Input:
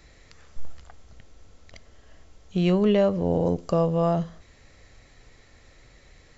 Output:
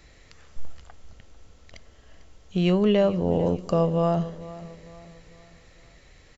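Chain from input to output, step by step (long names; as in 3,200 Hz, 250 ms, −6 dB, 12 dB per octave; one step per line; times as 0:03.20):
parametric band 2,900 Hz +3 dB 0.31 octaves
on a send: repeating echo 448 ms, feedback 42%, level −17 dB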